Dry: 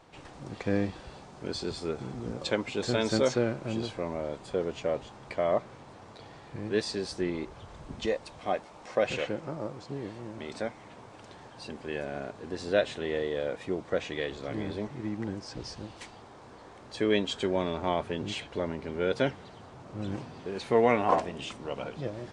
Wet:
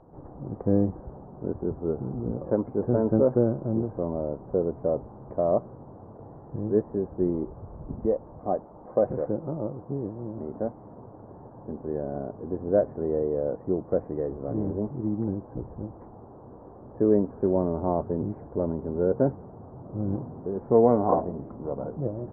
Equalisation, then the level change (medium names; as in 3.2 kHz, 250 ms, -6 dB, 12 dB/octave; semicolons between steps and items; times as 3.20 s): Gaussian low-pass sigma 9.8 samples; distance through air 190 m; +7.0 dB